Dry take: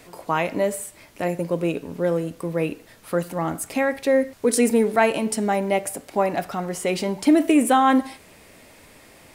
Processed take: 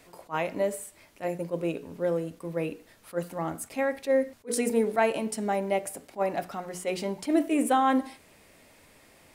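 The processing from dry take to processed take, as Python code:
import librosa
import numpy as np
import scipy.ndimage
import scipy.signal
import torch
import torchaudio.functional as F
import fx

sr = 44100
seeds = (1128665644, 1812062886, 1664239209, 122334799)

y = fx.hum_notches(x, sr, base_hz=60, count=8)
y = fx.dynamic_eq(y, sr, hz=540.0, q=1.0, threshold_db=-26.0, ratio=4.0, max_db=3)
y = fx.attack_slew(y, sr, db_per_s=380.0)
y = y * librosa.db_to_amplitude(-7.5)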